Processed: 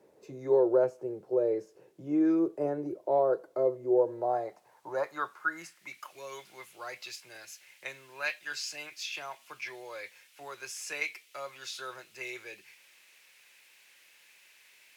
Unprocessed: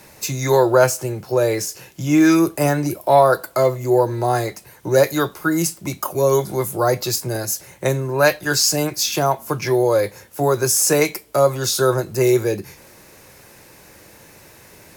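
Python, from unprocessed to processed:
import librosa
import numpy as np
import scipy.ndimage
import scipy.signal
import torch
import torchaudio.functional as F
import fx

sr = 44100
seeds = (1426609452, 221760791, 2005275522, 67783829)

y = fx.dmg_noise_colour(x, sr, seeds[0], colour='violet', level_db=-34.0)
y = fx.filter_sweep_bandpass(y, sr, from_hz=430.0, to_hz=2500.0, start_s=3.88, end_s=6.15, q=2.6)
y = F.gain(torch.from_numpy(y), -6.5).numpy()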